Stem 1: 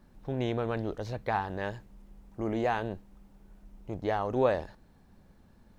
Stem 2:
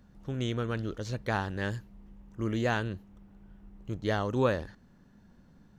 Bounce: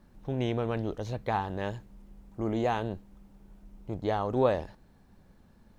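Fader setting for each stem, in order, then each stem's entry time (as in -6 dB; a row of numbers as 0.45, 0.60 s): 0.0, -13.0 dB; 0.00, 0.00 s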